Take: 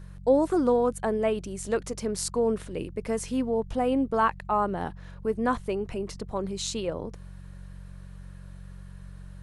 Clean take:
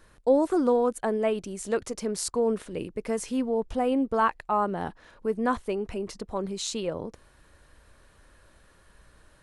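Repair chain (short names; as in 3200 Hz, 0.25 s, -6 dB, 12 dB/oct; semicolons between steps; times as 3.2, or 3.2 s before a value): de-hum 46.1 Hz, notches 4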